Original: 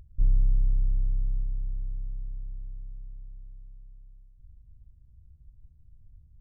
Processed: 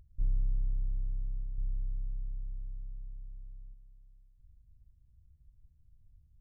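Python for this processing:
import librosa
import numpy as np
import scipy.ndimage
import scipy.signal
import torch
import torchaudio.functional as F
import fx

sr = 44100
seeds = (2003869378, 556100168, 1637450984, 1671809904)

y = fx.low_shelf(x, sr, hz=330.0, db=6.0, at=(1.58, 3.74))
y = y * 10.0 ** (-8.0 / 20.0)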